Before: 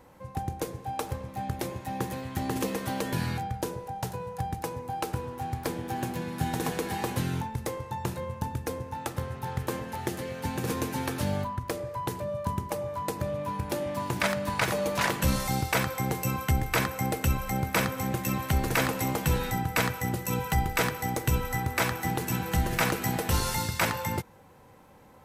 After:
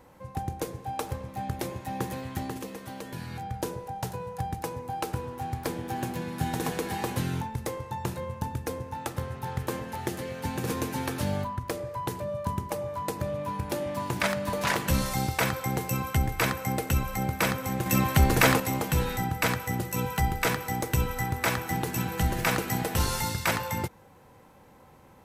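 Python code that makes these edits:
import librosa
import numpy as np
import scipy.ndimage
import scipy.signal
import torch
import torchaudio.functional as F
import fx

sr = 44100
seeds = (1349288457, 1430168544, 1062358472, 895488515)

y = fx.edit(x, sr, fx.fade_down_up(start_s=2.31, length_s=1.28, db=-8.5, fade_s=0.3),
    fx.cut(start_s=14.53, length_s=0.34),
    fx.clip_gain(start_s=18.2, length_s=0.74, db=5.5), tone=tone)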